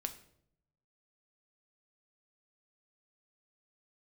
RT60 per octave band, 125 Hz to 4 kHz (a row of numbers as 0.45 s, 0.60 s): 1.2 s, 0.90 s, 0.80 s, 0.60 s, 0.55 s, 0.50 s